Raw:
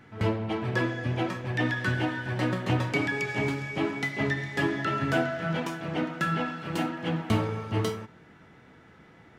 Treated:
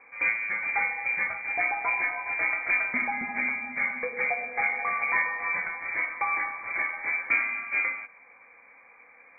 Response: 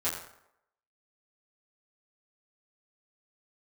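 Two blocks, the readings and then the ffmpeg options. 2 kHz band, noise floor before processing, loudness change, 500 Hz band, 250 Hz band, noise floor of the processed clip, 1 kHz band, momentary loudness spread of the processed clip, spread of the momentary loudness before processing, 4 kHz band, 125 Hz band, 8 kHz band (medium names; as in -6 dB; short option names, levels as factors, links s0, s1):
+6.5 dB, -54 dBFS, +2.0 dB, -9.5 dB, -16.5 dB, -55 dBFS, +1.5 dB, 4 LU, 5 LU, under -40 dB, under -25 dB, under -30 dB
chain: -af "aeval=exprs='0.237*(cos(1*acos(clip(val(0)/0.237,-1,1)))-cos(1*PI/2))+0.0015*(cos(4*acos(clip(val(0)/0.237,-1,1)))-cos(4*PI/2))':c=same,lowpass=f=2100:t=q:w=0.5098,lowpass=f=2100:t=q:w=0.6013,lowpass=f=2100:t=q:w=0.9,lowpass=f=2100:t=q:w=2.563,afreqshift=-2500"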